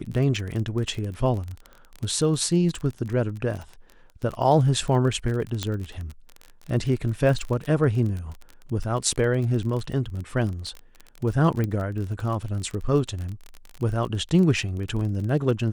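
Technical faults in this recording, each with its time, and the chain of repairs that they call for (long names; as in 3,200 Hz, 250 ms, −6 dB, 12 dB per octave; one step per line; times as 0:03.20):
surface crackle 31 per second −29 dBFS
0:05.63: click −12 dBFS
0:11.64: click −15 dBFS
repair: click removal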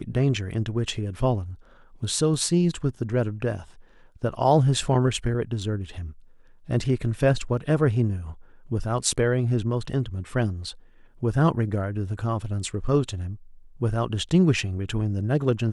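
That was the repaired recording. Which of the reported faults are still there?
0:05.63: click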